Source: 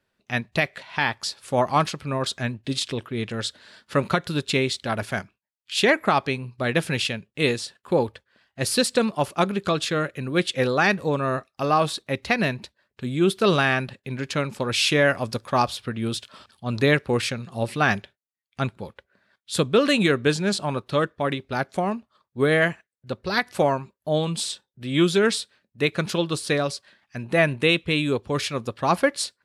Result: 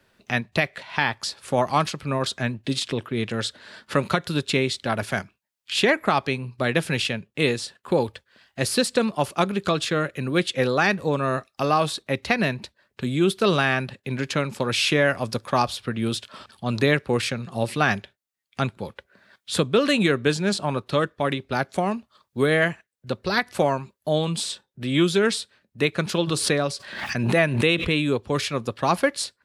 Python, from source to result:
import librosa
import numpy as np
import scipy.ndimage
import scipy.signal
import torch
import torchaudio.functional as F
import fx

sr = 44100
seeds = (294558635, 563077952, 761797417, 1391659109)

y = fx.pre_swell(x, sr, db_per_s=52.0, at=(26.26, 28.03), fade=0.02)
y = fx.band_squash(y, sr, depth_pct=40)